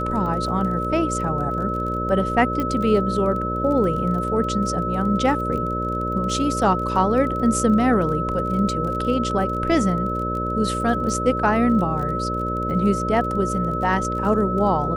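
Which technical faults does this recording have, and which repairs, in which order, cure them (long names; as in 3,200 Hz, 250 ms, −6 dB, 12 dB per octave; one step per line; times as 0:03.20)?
mains buzz 60 Hz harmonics 10 −27 dBFS
surface crackle 26 per second −30 dBFS
whistle 1,300 Hz −25 dBFS
0:02.60: click −13 dBFS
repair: click removal
hum removal 60 Hz, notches 10
notch filter 1,300 Hz, Q 30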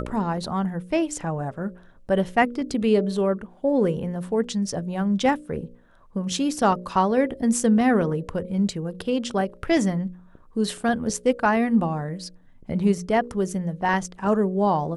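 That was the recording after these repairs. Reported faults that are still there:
none of them is left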